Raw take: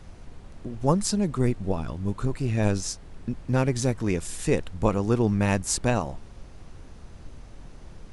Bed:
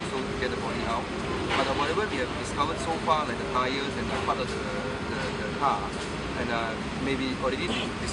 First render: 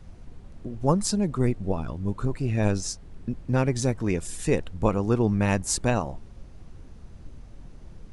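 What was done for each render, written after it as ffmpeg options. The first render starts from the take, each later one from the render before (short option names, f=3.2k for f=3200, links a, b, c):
-af "afftdn=nr=6:nf=-46"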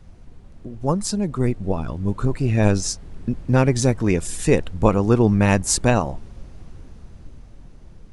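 -af "dynaudnorm=f=260:g=13:m=11.5dB"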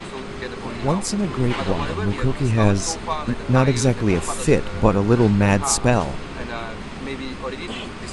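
-filter_complex "[1:a]volume=-1.5dB[a];[0:a][a]amix=inputs=2:normalize=0"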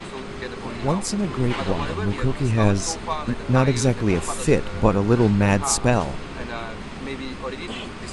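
-af "volume=-1.5dB"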